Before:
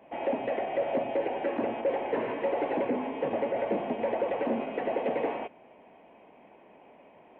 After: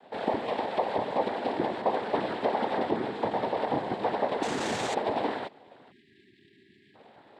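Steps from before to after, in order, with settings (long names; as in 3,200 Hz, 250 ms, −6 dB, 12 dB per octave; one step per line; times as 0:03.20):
0:04.42–0:04.94: sign of each sample alone
cochlear-implant simulation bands 6
0:05.92–0:06.95: time-frequency box erased 410–1,600 Hz
level +1 dB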